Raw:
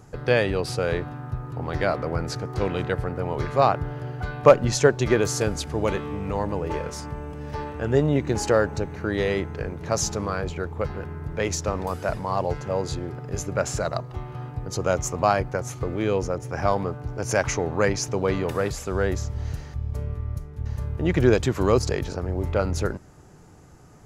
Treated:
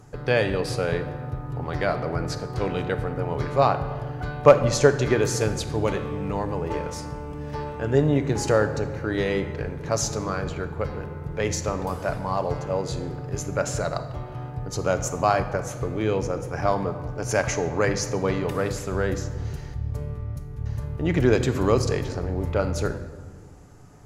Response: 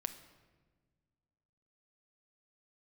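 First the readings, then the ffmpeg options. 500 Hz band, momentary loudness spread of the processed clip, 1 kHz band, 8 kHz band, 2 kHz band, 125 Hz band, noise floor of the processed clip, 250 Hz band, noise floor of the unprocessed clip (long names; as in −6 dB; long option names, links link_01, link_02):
0.0 dB, 12 LU, 0.0 dB, −0.5 dB, −0.5 dB, +0.5 dB, −38 dBFS, 0.0 dB, −43 dBFS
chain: -filter_complex "[1:a]atrim=start_sample=2205,asetrate=39249,aresample=44100[link_01];[0:a][link_01]afir=irnorm=-1:irlink=0"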